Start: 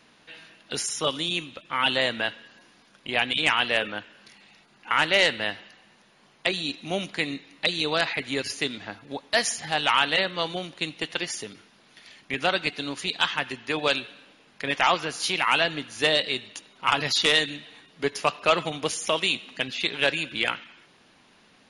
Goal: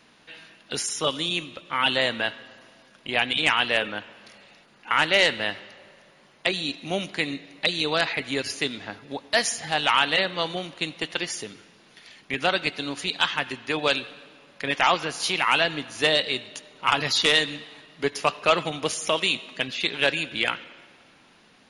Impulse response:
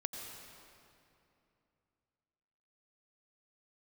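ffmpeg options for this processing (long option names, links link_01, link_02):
-filter_complex "[0:a]asplit=2[link_01][link_02];[1:a]atrim=start_sample=2205,highshelf=frequency=9800:gain=-7[link_03];[link_02][link_03]afir=irnorm=-1:irlink=0,volume=-17dB[link_04];[link_01][link_04]amix=inputs=2:normalize=0"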